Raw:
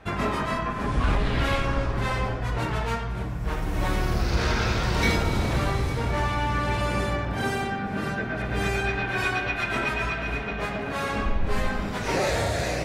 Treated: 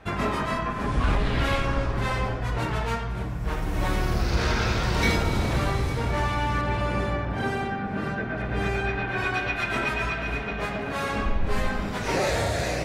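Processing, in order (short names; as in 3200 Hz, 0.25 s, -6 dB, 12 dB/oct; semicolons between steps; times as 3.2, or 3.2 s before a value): 6.61–9.34 high shelf 4500 Hz -11.5 dB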